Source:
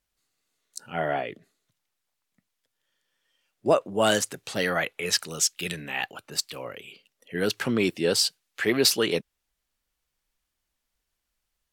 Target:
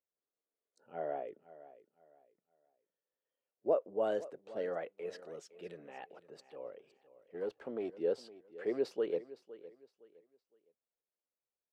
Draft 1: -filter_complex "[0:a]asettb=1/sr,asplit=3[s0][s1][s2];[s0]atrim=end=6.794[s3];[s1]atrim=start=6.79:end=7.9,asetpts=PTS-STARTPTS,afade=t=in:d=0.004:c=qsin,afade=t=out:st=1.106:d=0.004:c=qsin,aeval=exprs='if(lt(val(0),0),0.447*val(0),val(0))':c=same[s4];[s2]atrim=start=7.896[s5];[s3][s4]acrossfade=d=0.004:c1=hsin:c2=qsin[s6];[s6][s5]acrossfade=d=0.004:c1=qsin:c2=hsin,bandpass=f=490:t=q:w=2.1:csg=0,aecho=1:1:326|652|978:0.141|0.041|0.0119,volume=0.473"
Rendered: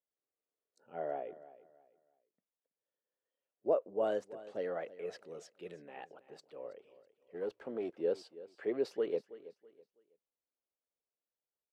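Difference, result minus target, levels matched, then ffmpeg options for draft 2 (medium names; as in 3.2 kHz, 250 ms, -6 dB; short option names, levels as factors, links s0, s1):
echo 186 ms early
-filter_complex "[0:a]asettb=1/sr,asplit=3[s0][s1][s2];[s0]atrim=end=6.794[s3];[s1]atrim=start=6.79:end=7.9,asetpts=PTS-STARTPTS,afade=t=in:d=0.004:c=qsin,afade=t=out:st=1.106:d=0.004:c=qsin,aeval=exprs='if(lt(val(0),0),0.447*val(0),val(0))':c=same[s4];[s2]atrim=start=7.896[s5];[s3][s4]acrossfade=d=0.004:c1=hsin:c2=qsin[s6];[s6][s5]acrossfade=d=0.004:c1=qsin:c2=hsin,bandpass=f=490:t=q:w=2.1:csg=0,aecho=1:1:512|1024|1536:0.141|0.041|0.0119,volume=0.473"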